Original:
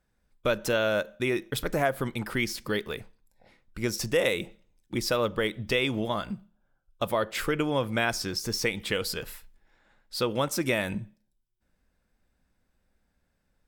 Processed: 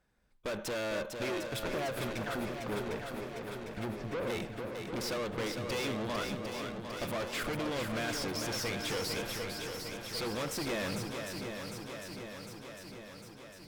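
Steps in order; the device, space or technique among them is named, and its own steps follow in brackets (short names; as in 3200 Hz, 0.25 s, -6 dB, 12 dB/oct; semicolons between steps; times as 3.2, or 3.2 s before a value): 2.15–4.3 treble ducked by the level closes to 380 Hz, closed at -24.5 dBFS; tube preamp driven hard (tube stage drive 38 dB, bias 0.6; low shelf 180 Hz -5 dB; high shelf 6300 Hz -6 dB); swung echo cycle 0.753 s, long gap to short 1.5:1, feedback 64%, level -6 dB; gain +5 dB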